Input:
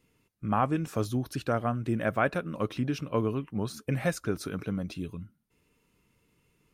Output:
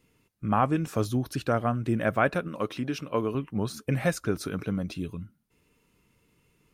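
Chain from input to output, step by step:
0:02.48–0:03.35: low-shelf EQ 160 Hz −11.5 dB
level +2.5 dB

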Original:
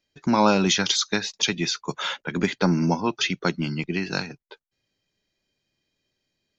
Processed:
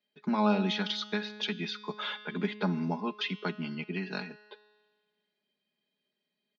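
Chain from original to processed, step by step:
Chebyshev band-pass filter 180–3,800 Hz, order 3
comb filter 4.8 ms, depth 67%
in parallel at −0.5 dB: downward compressor, threshold −29 dBFS, peak gain reduction 16 dB
on the sum: tuned comb filter 210 Hz, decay 1.5 s, mix 60%
level −5 dB

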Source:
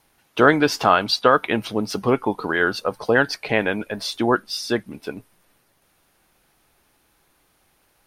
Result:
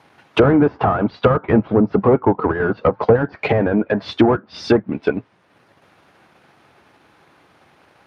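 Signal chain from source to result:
high-shelf EQ 10,000 Hz −3.5 dB
mid-hump overdrive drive 28 dB, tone 4,500 Hz, clips at −1 dBFS
RIAA equalisation playback
treble cut that deepens with the level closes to 1,000 Hz, closed at −6 dBFS
high-pass filter 80 Hz 24 dB per octave
transient designer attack +4 dB, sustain −6 dB
level −7 dB

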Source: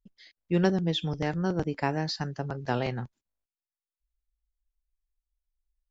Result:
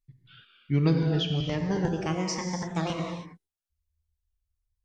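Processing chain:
gliding playback speed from 64% → 180%
reverb whose tail is shaped and stops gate 340 ms flat, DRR 2.5 dB
phaser whose notches keep moving one way falling 1.3 Hz

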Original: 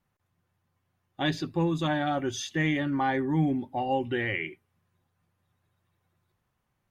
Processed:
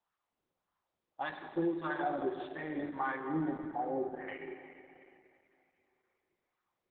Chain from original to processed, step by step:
LFO wah 1.7 Hz 370–1,300 Hz, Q 2.6
low-pass filter 5,400 Hz 24 dB per octave
0:03.64–0:04.28: treble cut that deepens with the level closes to 750 Hz, closed at −34 dBFS
mains-hum notches 60/120/180/240/300/360/420/480/540 Hz
feedback echo with a high-pass in the loop 360 ms, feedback 45%, high-pass 250 Hz, level −16.5 dB
four-comb reverb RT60 2.5 s, combs from 29 ms, DRR 5 dB
Opus 8 kbit/s 48,000 Hz

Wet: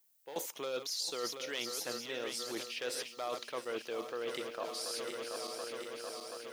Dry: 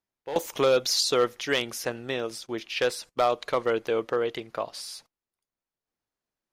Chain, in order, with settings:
feedback delay that plays each chunk backwards 365 ms, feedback 75%, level −12 dB
high-pass filter 180 Hz 12 dB per octave
high-shelf EQ 2,700 Hz +7.5 dB
reversed playback
downward compressor 6 to 1, threshold −38 dBFS, peak gain reduction 20.5 dB
reversed playback
background noise violet −72 dBFS
level +1 dB

